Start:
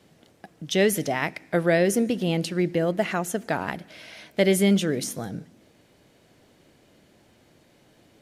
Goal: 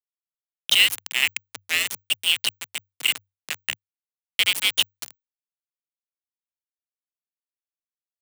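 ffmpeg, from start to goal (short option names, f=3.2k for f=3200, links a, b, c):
-af "highpass=f=2.7k:t=q:w=6.6,aeval=exprs='val(0)*gte(abs(val(0)),0.0891)':c=same,afreqshift=96,volume=3.5dB"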